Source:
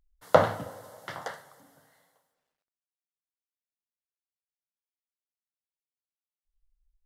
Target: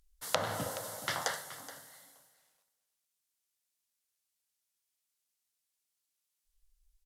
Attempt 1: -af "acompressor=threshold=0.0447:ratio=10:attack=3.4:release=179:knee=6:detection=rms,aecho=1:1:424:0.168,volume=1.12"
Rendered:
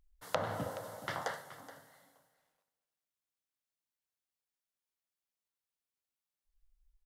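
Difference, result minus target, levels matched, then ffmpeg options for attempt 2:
8 kHz band -9.5 dB
-af "acompressor=threshold=0.0447:ratio=10:attack=3.4:release=179:knee=6:detection=rms,equalizer=f=9200:t=o:w=3:g=13.5,aecho=1:1:424:0.168,volume=1.12"

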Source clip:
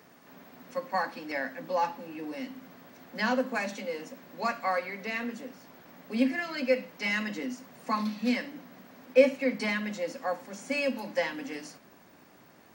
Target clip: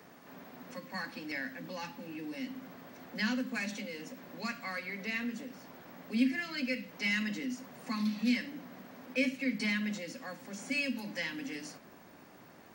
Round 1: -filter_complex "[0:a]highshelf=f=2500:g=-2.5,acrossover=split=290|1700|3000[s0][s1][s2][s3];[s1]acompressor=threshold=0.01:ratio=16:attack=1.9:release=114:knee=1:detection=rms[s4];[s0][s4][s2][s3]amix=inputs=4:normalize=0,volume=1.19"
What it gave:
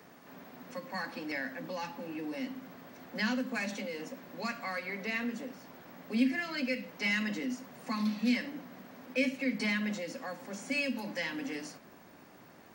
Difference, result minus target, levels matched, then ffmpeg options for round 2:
compression: peak gain reduction -7.5 dB
-filter_complex "[0:a]highshelf=f=2500:g=-2.5,acrossover=split=290|1700|3000[s0][s1][s2][s3];[s1]acompressor=threshold=0.00398:ratio=16:attack=1.9:release=114:knee=1:detection=rms[s4];[s0][s4][s2][s3]amix=inputs=4:normalize=0,volume=1.19"

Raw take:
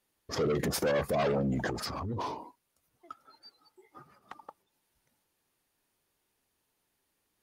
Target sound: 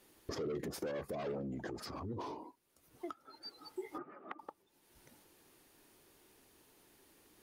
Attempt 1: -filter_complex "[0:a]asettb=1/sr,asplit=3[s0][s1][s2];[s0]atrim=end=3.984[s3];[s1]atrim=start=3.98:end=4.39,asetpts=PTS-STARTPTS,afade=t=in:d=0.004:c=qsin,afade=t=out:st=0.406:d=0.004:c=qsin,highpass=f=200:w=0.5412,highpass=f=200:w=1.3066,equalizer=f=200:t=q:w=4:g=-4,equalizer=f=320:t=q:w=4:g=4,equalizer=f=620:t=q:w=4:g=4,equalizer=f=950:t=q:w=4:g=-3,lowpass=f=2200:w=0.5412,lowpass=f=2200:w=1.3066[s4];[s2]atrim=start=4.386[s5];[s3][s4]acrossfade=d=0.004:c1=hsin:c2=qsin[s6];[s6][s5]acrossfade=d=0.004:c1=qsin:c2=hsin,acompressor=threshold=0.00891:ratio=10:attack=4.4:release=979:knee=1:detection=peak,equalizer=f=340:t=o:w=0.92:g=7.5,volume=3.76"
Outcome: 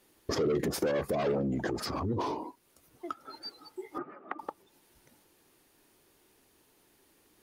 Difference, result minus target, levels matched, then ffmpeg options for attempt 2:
compression: peak gain reduction -10.5 dB
-filter_complex "[0:a]asettb=1/sr,asplit=3[s0][s1][s2];[s0]atrim=end=3.984[s3];[s1]atrim=start=3.98:end=4.39,asetpts=PTS-STARTPTS,afade=t=in:d=0.004:c=qsin,afade=t=out:st=0.406:d=0.004:c=qsin,highpass=f=200:w=0.5412,highpass=f=200:w=1.3066,equalizer=f=200:t=q:w=4:g=-4,equalizer=f=320:t=q:w=4:g=4,equalizer=f=620:t=q:w=4:g=4,equalizer=f=950:t=q:w=4:g=-3,lowpass=f=2200:w=0.5412,lowpass=f=2200:w=1.3066[s4];[s2]atrim=start=4.386[s5];[s3][s4]acrossfade=d=0.004:c1=hsin:c2=qsin[s6];[s6][s5]acrossfade=d=0.004:c1=qsin:c2=hsin,acompressor=threshold=0.00237:ratio=10:attack=4.4:release=979:knee=1:detection=peak,equalizer=f=340:t=o:w=0.92:g=7.5,volume=3.76"

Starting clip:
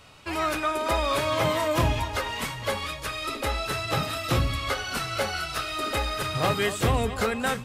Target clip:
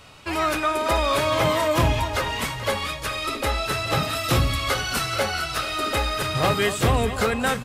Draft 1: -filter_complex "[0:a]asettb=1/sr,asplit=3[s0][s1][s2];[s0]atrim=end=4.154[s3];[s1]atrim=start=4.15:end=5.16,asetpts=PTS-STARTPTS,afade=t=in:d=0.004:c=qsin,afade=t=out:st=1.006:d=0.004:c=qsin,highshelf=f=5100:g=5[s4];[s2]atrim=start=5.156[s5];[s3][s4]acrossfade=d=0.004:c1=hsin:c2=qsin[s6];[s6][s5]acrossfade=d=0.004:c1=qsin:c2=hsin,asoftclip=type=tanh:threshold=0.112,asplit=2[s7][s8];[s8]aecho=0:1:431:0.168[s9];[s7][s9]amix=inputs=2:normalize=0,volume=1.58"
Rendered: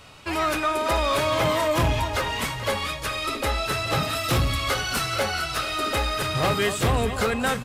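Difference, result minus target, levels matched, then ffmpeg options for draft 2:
saturation: distortion +11 dB
-filter_complex "[0:a]asettb=1/sr,asplit=3[s0][s1][s2];[s0]atrim=end=4.154[s3];[s1]atrim=start=4.15:end=5.16,asetpts=PTS-STARTPTS,afade=t=in:d=0.004:c=qsin,afade=t=out:st=1.006:d=0.004:c=qsin,highshelf=f=5100:g=5[s4];[s2]atrim=start=5.156[s5];[s3][s4]acrossfade=d=0.004:c1=hsin:c2=qsin[s6];[s6][s5]acrossfade=d=0.004:c1=qsin:c2=hsin,asoftclip=type=tanh:threshold=0.251,asplit=2[s7][s8];[s8]aecho=0:1:431:0.168[s9];[s7][s9]amix=inputs=2:normalize=0,volume=1.58"

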